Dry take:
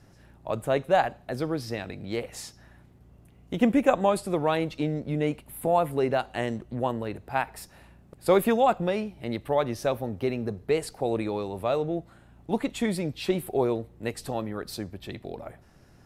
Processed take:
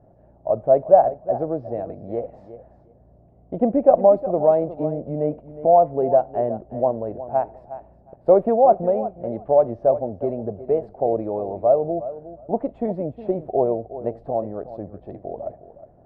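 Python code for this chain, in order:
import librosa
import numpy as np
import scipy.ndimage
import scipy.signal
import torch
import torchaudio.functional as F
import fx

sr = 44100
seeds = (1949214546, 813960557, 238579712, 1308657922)

p1 = fx.lowpass_res(x, sr, hz=650.0, q=4.9)
p2 = p1 + fx.echo_feedback(p1, sr, ms=362, feedback_pct=16, wet_db=-14.0, dry=0)
y = F.gain(torch.from_numpy(p2), -1.0).numpy()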